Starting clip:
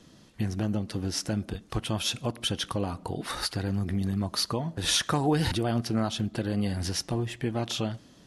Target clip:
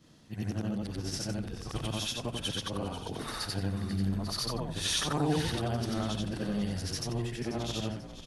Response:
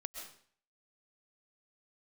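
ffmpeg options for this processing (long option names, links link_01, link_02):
-filter_complex "[0:a]afftfilt=real='re':imag='-im':win_size=8192:overlap=0.75,asplit=5[link_01][link_02][link_03][link_04][link_05];[link_02]adelay=489,afreqshift=-64,volume=-12.5dB[link_06];[link_03]adelay=978,afreqshift=-128,volume=-20.5dB[link_07];[link_04]adelay=1467,afreqshift=-192,volume=-28.4dB[link_08];[link_05]adelay=1956,afreqshift=-256,volume=-36.4dB[link_09];[link_01][link_06][link_07][link_08][link_09]amix=inputs=5:normalize=0"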